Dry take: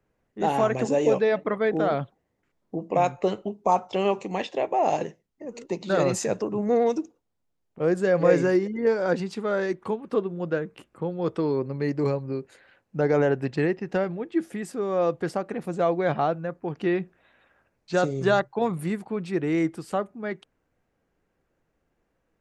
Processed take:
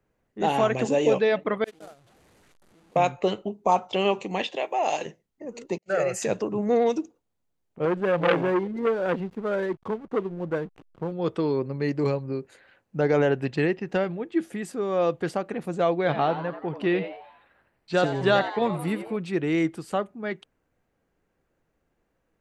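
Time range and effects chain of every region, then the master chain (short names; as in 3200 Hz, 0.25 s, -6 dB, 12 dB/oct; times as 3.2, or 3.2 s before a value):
1.64–2.96 delta modulation 64 kbps, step -24.5 dBFS + gate -19 dBFS, range -49 dB + fast leveller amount 50%
4.56–5.06 HPF 640 Hz 6 dB/oct + high shelf 5700 Hz +7 dB
5.78–6.22 gate -35 dBFS, range -32 dB + low shelf 130 Hz -12 dB + fixed phaser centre 1000 Hz, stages 6
7.85–11.12 LPF 1900 Hz + backlash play -41.5 dBFS + core saturation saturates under 1200 Hz
15.95–19.17 bell 6500 Hz -11 dB 0.2 oct + frequency-shifting echo 87 ms, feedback 47%, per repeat +130 Hz, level -11 dB
whole clip: notch 5300 Hz, Q 23; dynamic EQ 3100 Hz, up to +7 dB, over -49 dBFS, Q 1.6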